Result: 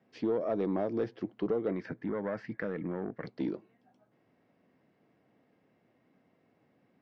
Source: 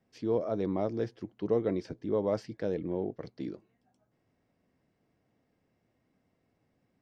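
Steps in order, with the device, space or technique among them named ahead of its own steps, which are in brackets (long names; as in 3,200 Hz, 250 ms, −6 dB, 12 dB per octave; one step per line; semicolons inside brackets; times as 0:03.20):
AM radio (band-pass filter 160–3,300 Hz; downward compressor 5 to 1, threshold −32 dBFS, peak gain reduction 9 dB; soft clipping −28 dBFS, distortion −19 dB)
0:01.72–0:03.27: drawn EQ curve 230 Hz 0 dB, 360 Hz −7 dB, 910 Hz −2 dB, 1,800 Hz +8 dB, 3,200 Hz −7 dB
level +6.5 dB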